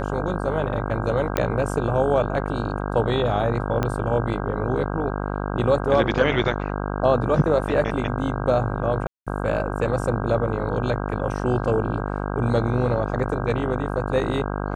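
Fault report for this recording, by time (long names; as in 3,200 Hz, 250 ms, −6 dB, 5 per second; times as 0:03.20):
mains buzz 50 Hz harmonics 32 −27 dBFS
0:01.37: click −7 dBFS
0:03.83: click −10 dBFS
0:09.07–0:09.27: drop-out 196 ms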